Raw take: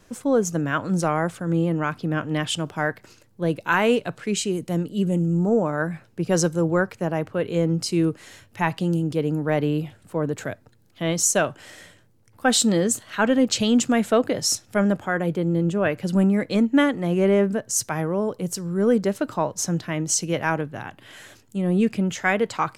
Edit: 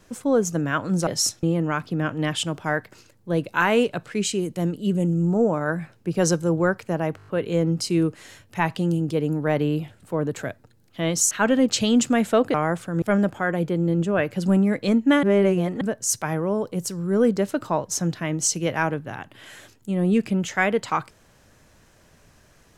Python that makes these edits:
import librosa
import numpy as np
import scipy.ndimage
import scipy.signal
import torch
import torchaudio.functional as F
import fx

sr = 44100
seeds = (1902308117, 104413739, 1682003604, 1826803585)

y = fx.edit(x, sr, fx.swap(start_s=1.07, length_s=0.48, other_s=14.33, other_length_s=0.36),
    fx.stutter(start_s=7.29, slice_s=0.02, count=6),
    fx.cut(start_s=11.33, length_s=1.77),
    fx.reverse_span(start_s=16.9, length_s=0.58), tone=tone)